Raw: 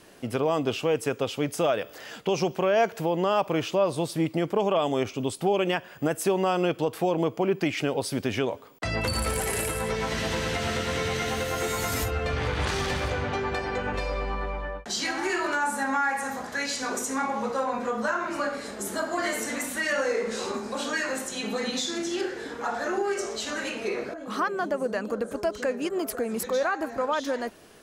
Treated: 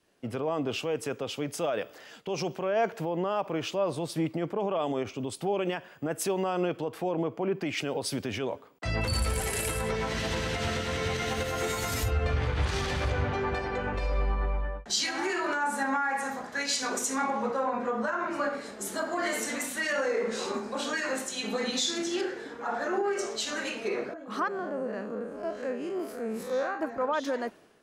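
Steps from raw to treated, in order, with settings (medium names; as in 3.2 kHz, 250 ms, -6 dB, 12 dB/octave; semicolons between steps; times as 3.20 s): 24.48–26.80 s: spectral blur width 108 ms; treble shelf 9.7 kHz -6.5 dB; peak limiter -20.5 dBFS, peak gain reduction 8.5 dB; three bands expanded up and down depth 70%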